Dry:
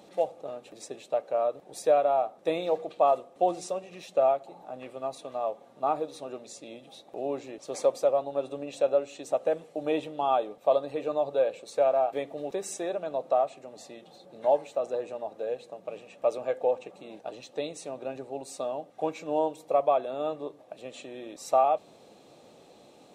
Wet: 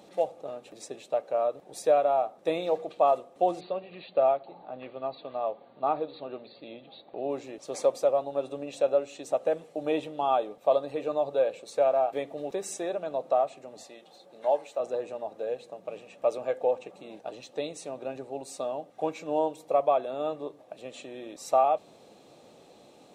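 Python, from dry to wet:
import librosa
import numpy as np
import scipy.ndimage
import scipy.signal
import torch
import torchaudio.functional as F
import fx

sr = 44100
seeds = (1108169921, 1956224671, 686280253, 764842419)

y = fx.brickwall_lowpass(x, sr, high_hz=4700.0, at=(3.59, 7.29), fade=0.02)
y = fx.highpass(y, sr, hz=460.0, slope=6, at=(13.83, 14.8))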